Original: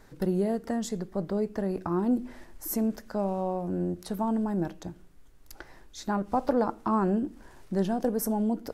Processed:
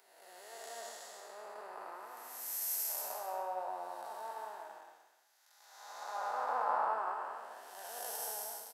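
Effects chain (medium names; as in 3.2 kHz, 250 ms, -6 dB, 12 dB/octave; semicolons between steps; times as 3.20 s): spectral blur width 704 ms; high-pass 770 Hz 24 dB/octave; treble shelf 9.6 kHz +6 dB; band-stop 1.1 kHz, Q 24; in parallel at -2.5 dB: compression, threshold -42 dBFS, peak gain reduction 6 dB; on the sum: flange 0.26 Hz, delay 0.8 ms, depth 5.6 ms, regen -66%; on a send: delay 178 ms -5.5 dB; on the sum: three bands expanded up and down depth 100%; trim +3 dB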